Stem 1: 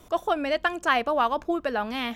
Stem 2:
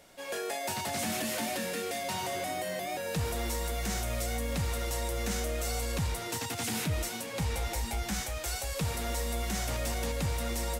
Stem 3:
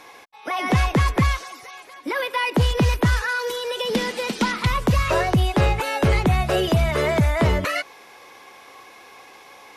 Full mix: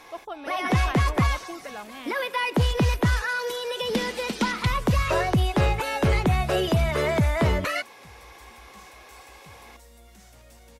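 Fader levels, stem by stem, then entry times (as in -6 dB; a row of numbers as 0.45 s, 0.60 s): -12.0 dB, -18.5 dB, -3.0 dB; 0.00 s, 0.65 s, 0.00 s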